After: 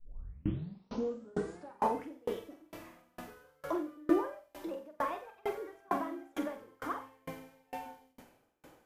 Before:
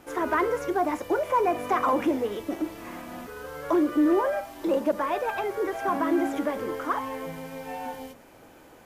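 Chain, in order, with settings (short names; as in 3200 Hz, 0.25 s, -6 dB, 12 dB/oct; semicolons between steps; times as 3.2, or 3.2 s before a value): tape start at the beginning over 2.21 s; flutter echo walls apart 7.9 m, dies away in 0.51 s; dB-ramp tremolo decaying 2.2 Hz, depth 34 dB; gain -3.5 dB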